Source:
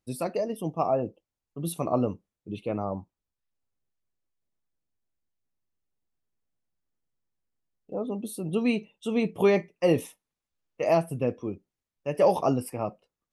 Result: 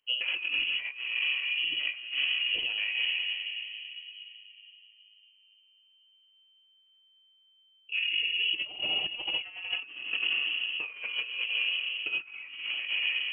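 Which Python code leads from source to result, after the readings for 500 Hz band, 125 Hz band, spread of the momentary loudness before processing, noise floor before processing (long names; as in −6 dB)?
−28.5 dB, below −30 dB, 14 LU, below −85 dBFS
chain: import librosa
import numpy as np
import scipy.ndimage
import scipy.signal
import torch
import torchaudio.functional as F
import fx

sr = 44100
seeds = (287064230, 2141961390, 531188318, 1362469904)

y = fx.hum_notches(x, sr, base_hz=50, count=3)
y = 10.0 ** (-18.5 / 20.0) * np.tanh(y / 10.0 ** (-18.5 / 20.0))
y = fx.room_shoebox(y, sr, seeds[0], volume_m3=120.0, walls='hard', distance_m=0.39)
y = fx.over_compress(y, sr, threshold_db=-30.0, ratio=-0.5)
y = fx.freq_invert(y, sr, carrier_hz=3100)
y = y * librosa.db_to_amplitude(-1.5)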